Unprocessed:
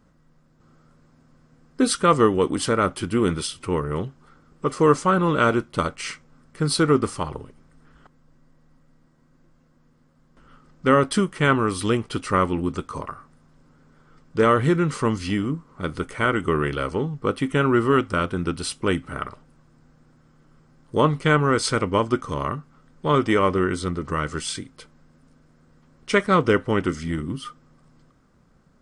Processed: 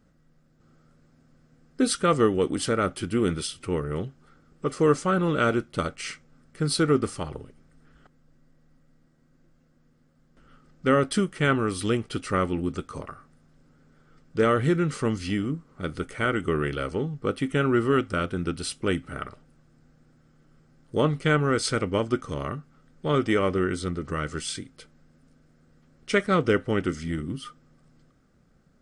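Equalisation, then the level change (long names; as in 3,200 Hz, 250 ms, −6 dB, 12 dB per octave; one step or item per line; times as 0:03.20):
parametric band 1,000 Hz −10.5 dB 0.32 octaves
−3.0 dB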